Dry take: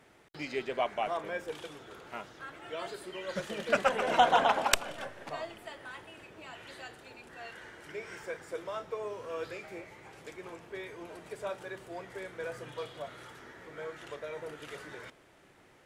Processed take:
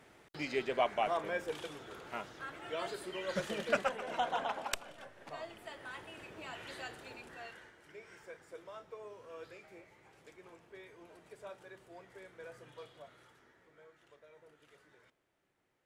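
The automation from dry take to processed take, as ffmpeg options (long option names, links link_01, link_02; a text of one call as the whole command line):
ffmpeg -i in.wav -af "volume=12dB,afade=type=out:start_time=3.52:duration=0.46:silence=0.281838,afade=type=in:start_time=5.06:duration=1.23:silence=0.251189,afade=type=out:start_time=7.14:duration=0.6:silence=0.251189,afade=type=out:start_time=12.82:duration=1.07:silence=0.375837" out.wav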